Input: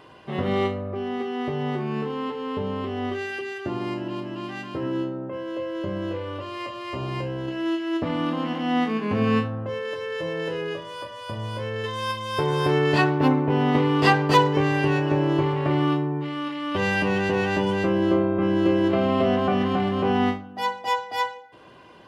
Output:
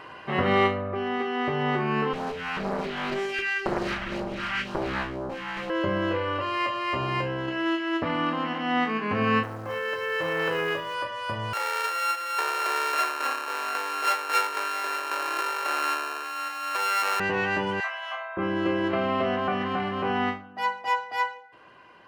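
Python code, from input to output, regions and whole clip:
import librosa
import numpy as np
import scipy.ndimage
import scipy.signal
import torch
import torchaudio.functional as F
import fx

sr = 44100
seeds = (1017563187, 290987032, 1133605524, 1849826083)

y = fx.chain(x, sr, fx.lower_of_two(delay_ms=5.1),
    fx.phaser_stages(stages=2, low_hz=410.0, high_hz=2000.0, hz=2.0, feedback_pct=15),
    fx.doppler_dist(depth_ms=0.93), at=(2.13, 5.7))
y = fx.chain(y, sr, fx.quant_companded(bits=6),
    fx.transformer_sat(knee_hz=610.0), at=(9.43, 10.95))
y = fx.chain(y, sr, fx.sample_sort(block=32),
    fx.highpass(hz=440.0, slope=24),
    fx.transformer_sat(knee_hz=3000.0), at=(11.53, 17.2))
y = fx.chain(y, sr, fx.steep_highpass(hz=630.0, slope=96),
    fx.doubler(ms=30.0, db=-4.0), at=(17.8, 18.37))
y = fx.peak_eq(y, sr, hz=1600.0, db=11.0, octaves=2.3)
y = fx.notch(y, sr, hz=3500.0, q=12.0)
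y = fx.rider(y, sr, range_db=10, speed_s=2.0)
y = y * 10.0 ** (-8.5 / 20.0)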